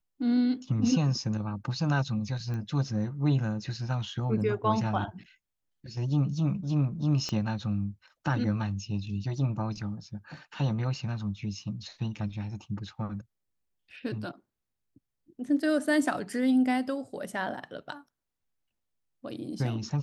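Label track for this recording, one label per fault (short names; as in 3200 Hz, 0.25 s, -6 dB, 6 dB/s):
2.540000	2.540000	pop -26 dBFS
7.290000	7.290000	pop -20 dBFS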